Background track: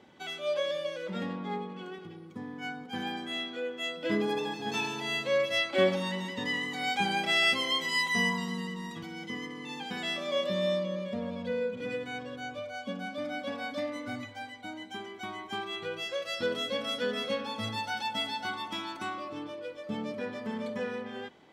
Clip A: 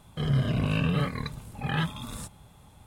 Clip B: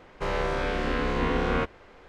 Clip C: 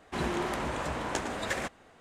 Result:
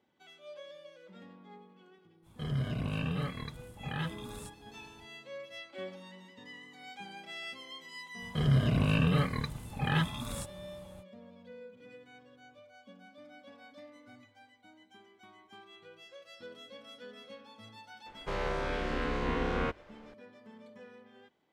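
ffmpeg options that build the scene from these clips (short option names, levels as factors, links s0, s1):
-filter_complex "[1:a]asplit=2[s0][s1];[0:a]volume=0.133[s2];[s0]atrim=end=2.86,asetpts=PTS-STARTPTS,volume=0.398,afade=t=in:d=0.05,afade=t=out:st=2.81:d=0.05,adelay=2220[s3];[s1]atrim=end=2.86,asetpts=PTS-STARTPTS,volume=0.891,afade=t=in:d=0.05,afade=t=out:st=2.81:d=0.05,adelay=360738S[s4];[2:a]atrim=end=2.08,asetpts=PTS-STARTPTS,volume=0.501,afade=t=in:d=0.004:c=hsin,afade=t=out:st=2.076:d=0.004:c=hsin,adelay=18060[s5];[s2][s3][s4][s5]amix=inputs=4:normalize=0"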